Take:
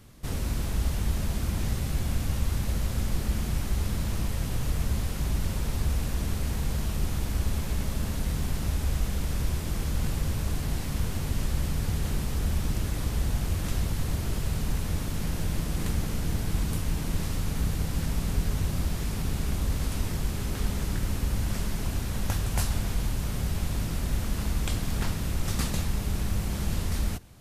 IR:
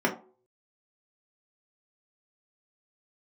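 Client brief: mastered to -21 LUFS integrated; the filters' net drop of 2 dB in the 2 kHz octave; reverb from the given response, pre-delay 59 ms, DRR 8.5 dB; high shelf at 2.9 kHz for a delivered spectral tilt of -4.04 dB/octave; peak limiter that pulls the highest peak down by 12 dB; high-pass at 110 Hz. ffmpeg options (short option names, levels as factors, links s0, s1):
-filter_complex "[0:a]highpass=110,equalizer=f=2000:t=o:g=-4,highshelf=f=2900:g=3.5,alimiter=level_in=1.33:limit=0.0631:level=0:latency=1,volume=0.75,asplit=2[s0][s1];[1:a]atrim=start_sample=2205,adelay=59[s2];[s1][s2]afir=irnorm=-1:irlink=0,volume=0.0841[s3];[s0][s3]amix=inputs=2:normalize=0,volume=5.31"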